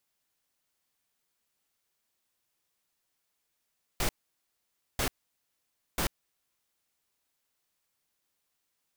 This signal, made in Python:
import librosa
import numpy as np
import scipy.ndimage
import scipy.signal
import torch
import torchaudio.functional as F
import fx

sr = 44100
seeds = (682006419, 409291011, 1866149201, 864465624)

y = fx.noise_burst(sr, seeds[0], colour='pink', on_s=0.09, off_s=0.9, bursts=3, level_db=-28.5)